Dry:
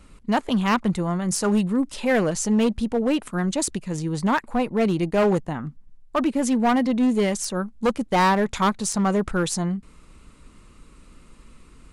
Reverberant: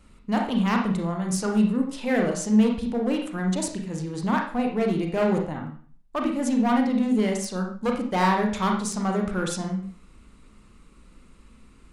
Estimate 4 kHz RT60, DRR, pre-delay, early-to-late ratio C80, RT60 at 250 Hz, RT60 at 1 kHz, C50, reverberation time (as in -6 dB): 0.40 s, 1.5 dB, 27 ms, 9.5 dB, 0.45 s, 0.45 s, 5.0 dB, 0.45 s